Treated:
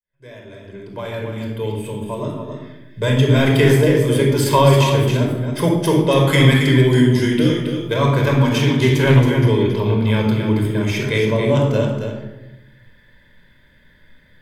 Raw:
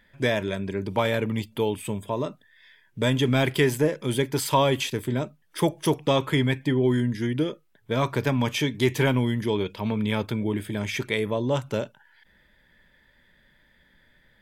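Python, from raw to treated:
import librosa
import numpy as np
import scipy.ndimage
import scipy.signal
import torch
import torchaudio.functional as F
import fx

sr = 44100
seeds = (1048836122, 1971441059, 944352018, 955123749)

y = fx.fade_in_head(x, sr, length_s=3.59)
y = fx.high_shelf(y, sr, hz=2300.0, db=11.5, at=(6.27, 7.94))
y = np.clip(y, -10.0 ** (-9.0 / 20.0), 10.0 ** (-9.0 / 20.0))
y = y + 10.0 ** (-7.0 / 20.0) * np.pad(y, (int(274 * sr / 1000.0), 0))[:len(y)]
y = fx.room_shoebox(y, sr, seeds[0], volume_m3=3400.0, walls='furnished', distance_m=5.1)
y = fx.doppler_dist(y, sr, depth_ms=0.15, at=(8.58, 9.27))
y = y * librosa.db_to_amplitude(1.5)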